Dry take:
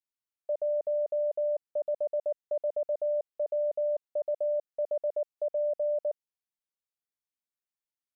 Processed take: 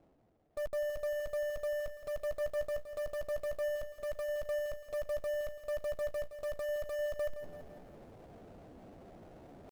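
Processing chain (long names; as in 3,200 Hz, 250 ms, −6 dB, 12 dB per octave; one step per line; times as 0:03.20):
one-sided soft clipper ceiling −38 dBFS
elliptic low-pass filter 720 Hz, stop band 70 dB
low-shelf EQ 380 Hz +3.5 dB
reversed playback
upward compression, threshold −39 dBFS
reversed playback
brickwall limiter −36.5 dBFS, peak gain reduction 10.5 dB
power curve on the samples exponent 0.5
tempo change 0.84×
in parallel at −6.5 dB: bit reduction 7 bits
on the sum: feedback echo at a low word length 168 ms, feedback 55%, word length 11 bits, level −11.5 dB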